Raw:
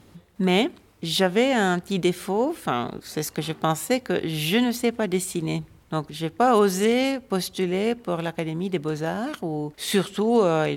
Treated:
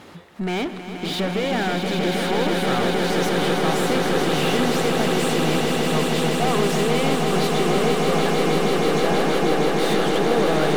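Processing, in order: saturation -19.5 dBFS, distortion -11 dB; overdrive pedal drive 22 dB, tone 2.4 kHz, clips at -19.5 dBFS; on a send: echo with a slow build-up 159 ms, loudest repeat 8, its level -6 dB

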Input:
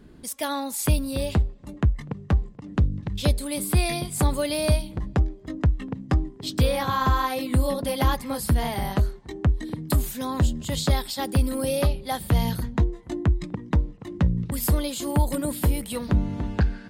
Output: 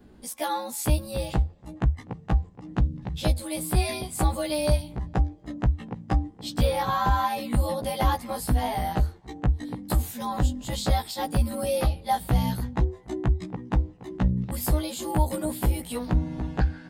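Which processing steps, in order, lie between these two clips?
short-time spectra conjugated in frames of 33 ms; peaking EQ 780 Hz +7 dB 0.49 oct

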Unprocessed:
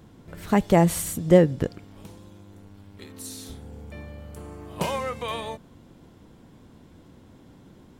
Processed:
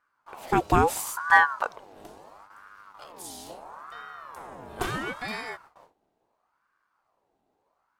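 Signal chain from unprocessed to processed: gate with hold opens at -39 dBFS; ring modulator with a swept carrier 930 Hz, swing 45%, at 0.74 Hz

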